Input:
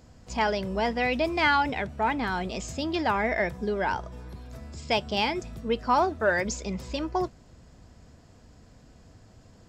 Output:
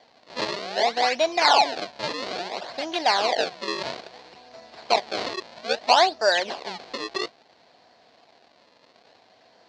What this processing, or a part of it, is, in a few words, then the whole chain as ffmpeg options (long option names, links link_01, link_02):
circuit-bent sampling toy: -af "acrusher=samples=33:mix=1:aa=0.000001:lfo=1:lforange=52.8:lforate=0.6,highpass=560,equalizer=frequency=720:width_type=q:width=4:gain=6,equalizer=frequency=1300:width_type=q:width=4:gain=-6,equalizer=frequency=4300:width_type=q:width=4:gain=10,lowpass=frequency=5600:width=0.5412,lowpass=frequency=5600:width=1.3066,volume=4.5dB"